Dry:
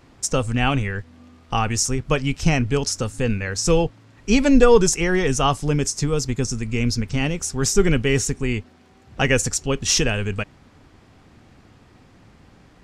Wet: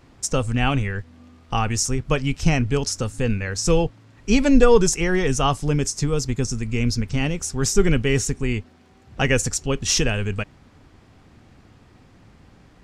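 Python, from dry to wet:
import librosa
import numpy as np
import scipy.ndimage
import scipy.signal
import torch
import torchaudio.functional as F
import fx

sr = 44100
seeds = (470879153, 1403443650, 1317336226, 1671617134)

y = fx.low_shelf(x, sr, hz=150.0, db=3.0)
y = y * librosa.db_to_amplitude(-1.5)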